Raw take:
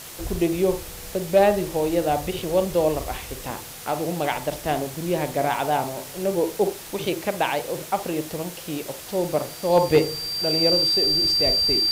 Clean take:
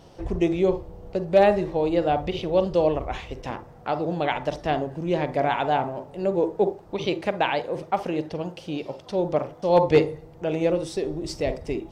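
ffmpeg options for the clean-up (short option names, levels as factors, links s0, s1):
-af "bandreject=f=4700:w=30,afwtdn=0.013"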